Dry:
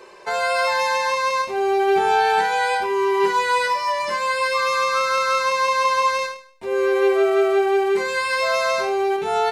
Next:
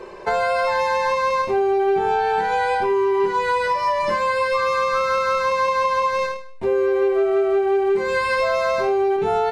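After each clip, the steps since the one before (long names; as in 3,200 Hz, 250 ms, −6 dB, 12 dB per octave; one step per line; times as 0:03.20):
spectral tilt −3 dB per octave
downward compressor, threshold −22 dBFS, peak gain reduction 11 dB
level +5 dB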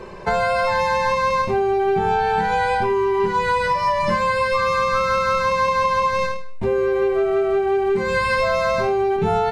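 low shelf with overshoot 250 Hz +8.5 dB, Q 1.5
level +1.5 dB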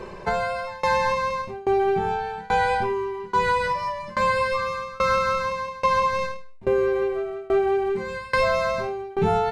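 shaped tremolo saw down 1.2 Hz, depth 95%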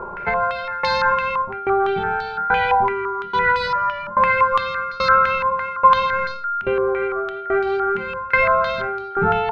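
steady tone 1,400 Hz −32 dBFS
low-pass on a step sequencer 5.9 Hz 950–4,300 Hz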